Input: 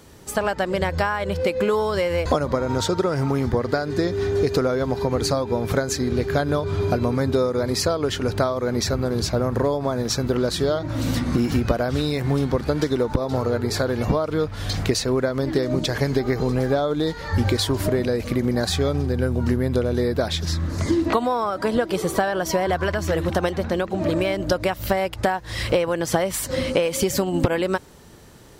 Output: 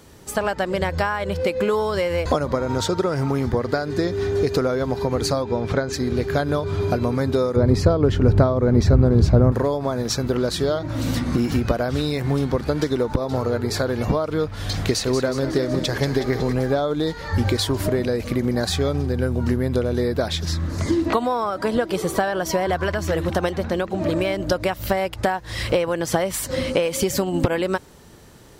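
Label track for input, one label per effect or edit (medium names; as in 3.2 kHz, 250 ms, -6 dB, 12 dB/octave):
5.420000	5.920000	low-pass 8.2 kHz -> 3.7 kHz
7.560000	9.520000	tilt EQ -3.5 dB/octave
14.470000	16.530000	thinning echo 184 ms, feedback 58%, level -8.5 dB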